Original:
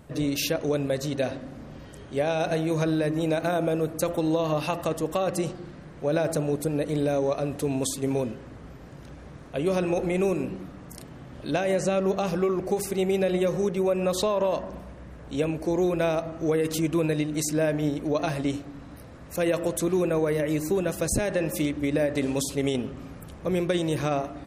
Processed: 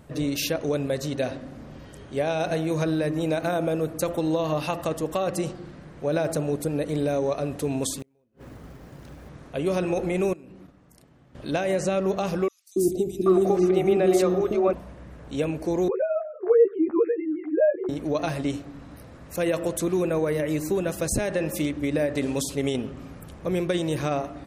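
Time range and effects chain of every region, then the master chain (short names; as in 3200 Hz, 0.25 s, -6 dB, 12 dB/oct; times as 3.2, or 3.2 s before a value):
7.99–9.29 companded quantiser 6-bit + flipped gate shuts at -24 dBFS, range -41 dB + mismatched tape noise reduction decoder only
10.33–11.35 gate -40 dBFS, range -13 dB + compressor 12:1, threshold -42 dBFS
12.48–14.73 small resonant body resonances 340/690/1200 Hz, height 14 dB, ringing for 40 ms + three bands offset in time highs, lows, mids 0.28/0.78 s, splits 390/4300 Hz
15.88–17.89 sine-wave speech + LPF 1500 Hz 24 dB/oct + doubler 13 ms -2 dB
whole clip: dry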